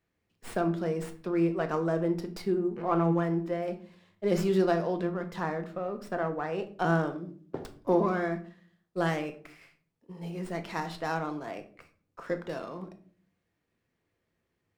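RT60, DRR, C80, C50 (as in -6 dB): 0.45 s, 6.5 dB, 17.5 dB, 13.0 dB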